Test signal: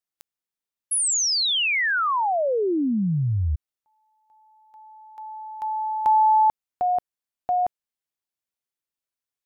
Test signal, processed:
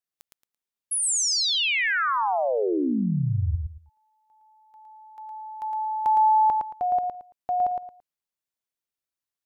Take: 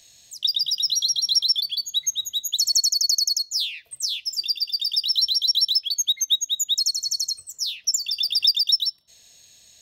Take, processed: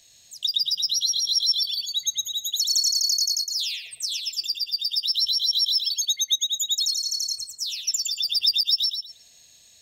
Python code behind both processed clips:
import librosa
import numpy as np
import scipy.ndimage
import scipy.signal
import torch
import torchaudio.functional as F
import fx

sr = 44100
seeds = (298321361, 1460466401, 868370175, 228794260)

y = fx.echo_feedback(x, sr, ms=112, feedback_pct=24, wet_db=-4.0)
y = y * librosa.db_to_amplitude(-3.0)